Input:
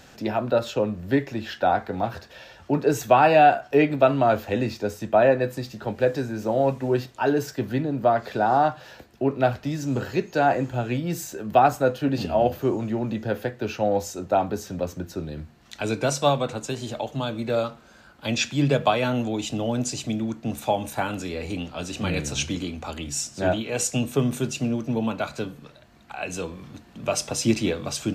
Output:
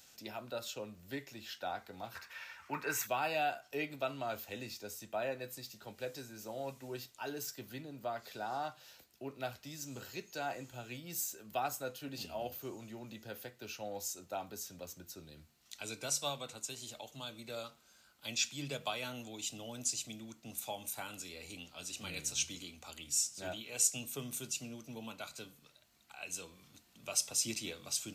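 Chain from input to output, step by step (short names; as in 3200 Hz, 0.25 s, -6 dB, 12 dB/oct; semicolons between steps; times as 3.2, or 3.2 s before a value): pre-emphasis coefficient 0.9; notch 1700 Hz, Q 12; 2.15–3.07 band shelf 1500 Hz +15.5 dB; gain -2.5 dB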